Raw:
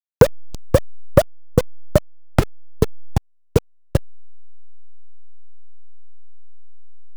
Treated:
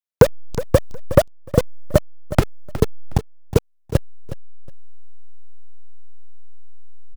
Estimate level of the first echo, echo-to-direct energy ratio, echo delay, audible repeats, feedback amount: −14.0 dB, −14.0 dB, 365 ms, 2, 19%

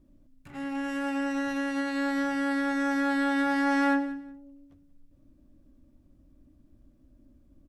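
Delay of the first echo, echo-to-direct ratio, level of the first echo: 182 ms, −16.0 dB, −16.0 dB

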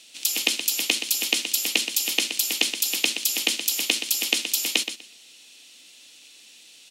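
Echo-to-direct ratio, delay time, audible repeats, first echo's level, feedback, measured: −9.5 dB, 123 ms, 2, −9.5 dB, 18%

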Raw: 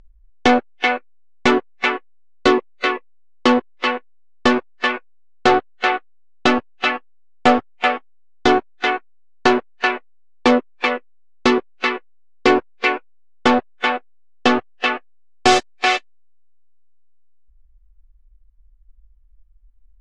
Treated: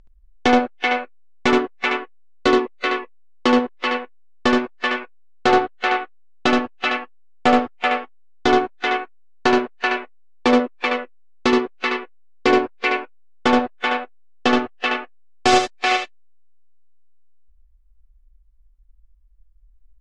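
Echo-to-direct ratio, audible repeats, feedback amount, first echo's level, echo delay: −5.0 dB, 1, repeats not evenly spaced, −5.0 dB, 73 ms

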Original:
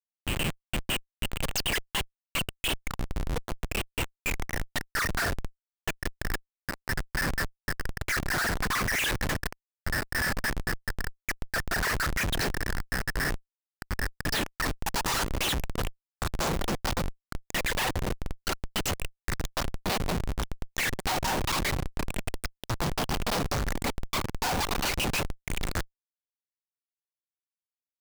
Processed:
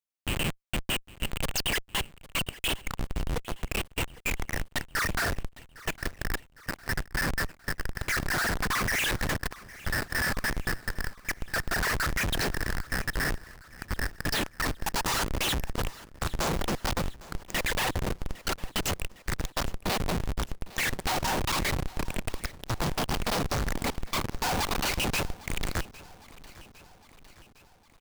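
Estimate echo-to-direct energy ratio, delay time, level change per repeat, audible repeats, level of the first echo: −18.0 dB, 807 ms, −4.5 dB, 4, −20.0 dB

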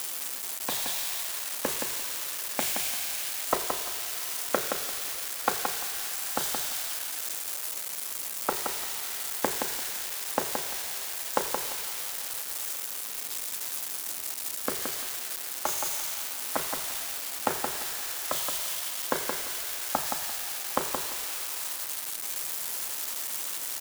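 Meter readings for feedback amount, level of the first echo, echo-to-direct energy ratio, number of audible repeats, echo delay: 20%, −5.5 dB, −5.5 dB, 2, 172 ms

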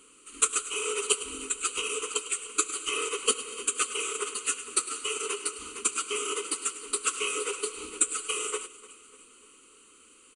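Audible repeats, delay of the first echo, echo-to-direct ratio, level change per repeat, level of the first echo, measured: 3, 298 ms, −17.5 dB, −5.5 dB, −19.0 dB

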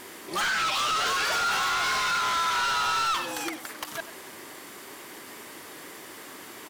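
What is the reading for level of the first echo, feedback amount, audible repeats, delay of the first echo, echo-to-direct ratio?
−14.5 dB, repeats not evenly spaced, 1, 95 ms, −14.5 dB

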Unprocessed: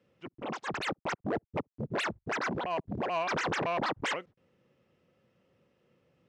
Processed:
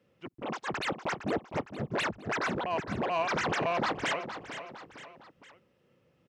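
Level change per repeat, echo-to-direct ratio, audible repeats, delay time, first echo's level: −6.5 dB, −9.5 dB, 3, 460 ms, −10.5 dB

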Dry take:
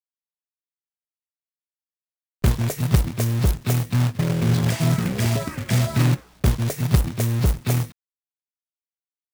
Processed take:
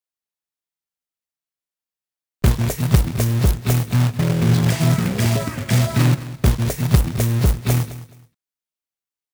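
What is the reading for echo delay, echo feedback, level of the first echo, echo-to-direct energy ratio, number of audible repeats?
212 ms, 22%, −16.0 dB, −16.0 dB, 2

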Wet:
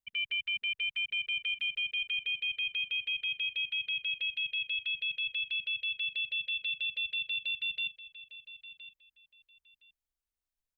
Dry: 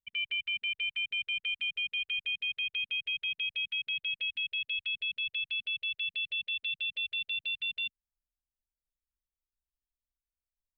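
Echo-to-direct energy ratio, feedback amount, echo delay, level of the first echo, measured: −15.0 dB, 21%, 1,016 ms, −15.0 dB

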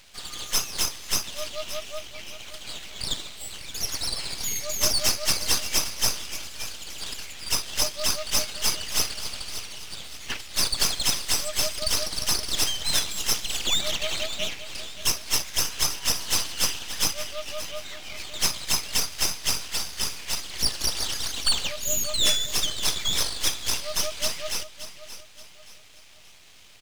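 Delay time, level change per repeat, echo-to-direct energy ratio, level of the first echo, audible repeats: 575 ms, −8.5 dB, −12.5 dB, −13.0 dB, 3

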